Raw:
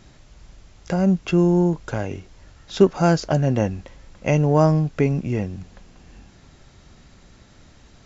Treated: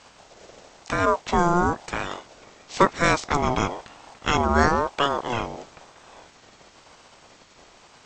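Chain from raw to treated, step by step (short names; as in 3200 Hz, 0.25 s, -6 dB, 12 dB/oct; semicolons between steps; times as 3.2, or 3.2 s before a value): spectral limiter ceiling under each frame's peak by 17 dB; ring modulator with a swept carrier 680 Hz, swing 25%, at 1 Hz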